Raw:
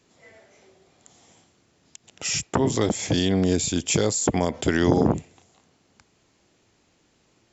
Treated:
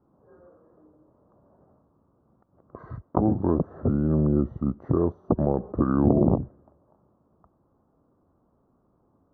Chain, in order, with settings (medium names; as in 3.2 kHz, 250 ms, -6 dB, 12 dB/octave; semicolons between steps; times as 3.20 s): wide varispeed 0.806×; elliptic low-pass 1.2 kHz, stop band 50 dB